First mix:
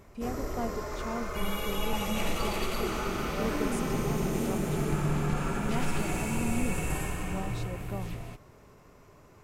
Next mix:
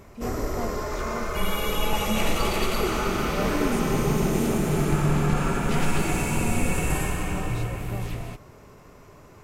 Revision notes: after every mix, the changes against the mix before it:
background +6.5 dB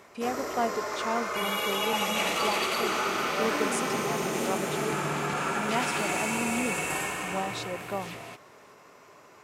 speech +10.0 dB; master: add frequency weighting A

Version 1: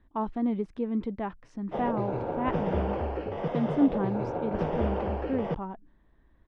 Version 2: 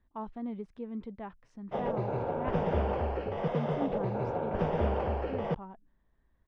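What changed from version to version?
speech -8.5 dB; master: add peaking EQ 310 Hz -6.5 dB 0.37 oct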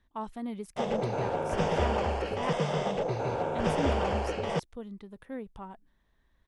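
background: entry -0.95 s; master: remove tape spacing loss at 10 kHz 37 dB

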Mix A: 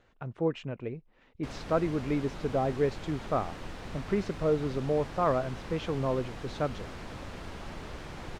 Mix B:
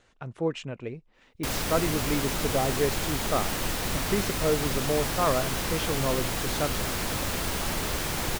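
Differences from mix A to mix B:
background +9.5 dB; master: remove tape spacing loss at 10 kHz 20 dB

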